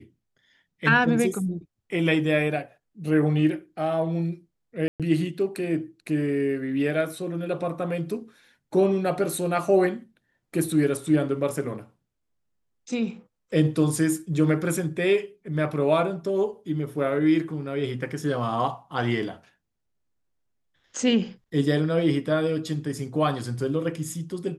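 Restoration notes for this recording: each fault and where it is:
4.88–5 gap 0.117 s

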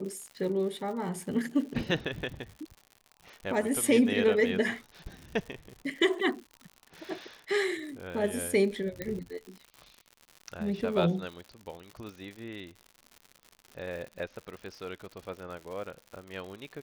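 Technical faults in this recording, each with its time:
crackle 110/s -39 dBFS
9.02 pop -19 dBFS

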